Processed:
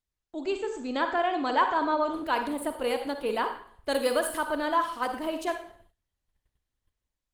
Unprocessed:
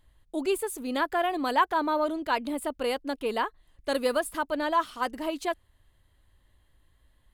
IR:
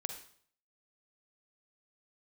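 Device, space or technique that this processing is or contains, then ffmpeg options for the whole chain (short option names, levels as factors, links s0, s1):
speakerphone in a meeting room: -filter_complex "[0:a]asplit=3[s0][s1][s2];[s0]afade=t=out:st=3.9:d=0.02[s3];[s1]highshelf=f=2700:g=4,afade=t=in:st=3.9:d=0.02,afade=t=out:st=4.51:d=0.02[s4];[s2]afade=t=in:st=4.51:d=0.02[s5];[s3][s4][s5]amix=inputs=3:normalize=0[s6];[1:a]atrim=start_sample=2205[s7];[s6][s7]afir=irnorm=-1:irlink=0,dynaudnorm=f=190:g=5:m=2.24,agate=range=0.1:threshold=0.00282:ratio=16:detection=peak,volume=0.501" -ar 48000 -c:a libopus -b:a 24k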